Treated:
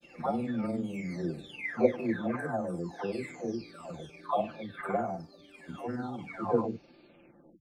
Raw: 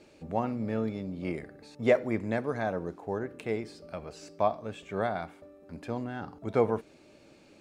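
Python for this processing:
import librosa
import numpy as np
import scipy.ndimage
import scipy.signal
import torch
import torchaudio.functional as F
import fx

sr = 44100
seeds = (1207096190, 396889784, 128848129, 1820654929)

y = fx.spec_delay(x, sr, highs='early', ms=985)
y = fx.granulator(y, sr, seeds[0], grain_ms=100.0, per_s=20.0, spray_ms=12.0, spread_st=0)
y = F.gain(torch.from_numpy(y), 3.0).numpy()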